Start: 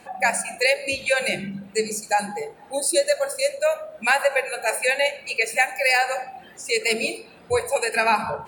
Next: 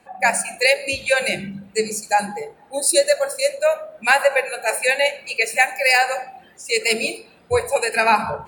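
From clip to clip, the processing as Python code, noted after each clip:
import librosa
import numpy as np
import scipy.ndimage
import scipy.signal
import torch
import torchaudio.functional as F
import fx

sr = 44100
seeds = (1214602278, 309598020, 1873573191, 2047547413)

y = fx.band_widen(x, sr, depth_pct=40)
y = y * librosa.db_to_amplitude(3.0)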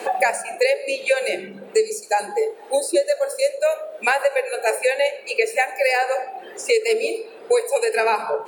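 y = fx.highpass_res(x, sr, hz=420.0, q=4.3)
y = fx.band_squash(y, sr, depth_pct=100)
y = y * librosa.db_to_amplitude(-6.5)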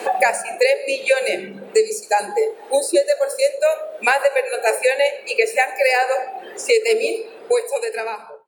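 y = fx.fade_out_tail(x, sr, length_s=1.22)
y = y * librosa.db_to_amplitude(2.5)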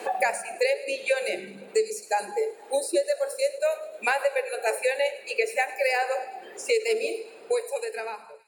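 y = fx.echo_wet_highpass(x, sr, ms=105, feedback_pct=65, hz=2100.0, wet_db=-17)
y = y * librosa.db_to_amplitude(-8.0)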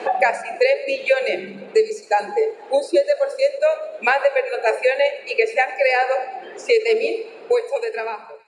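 y = fx.air_absorb(x, sr, metres=130.0)
y = y * librosa.db_to_amplitude(8.0)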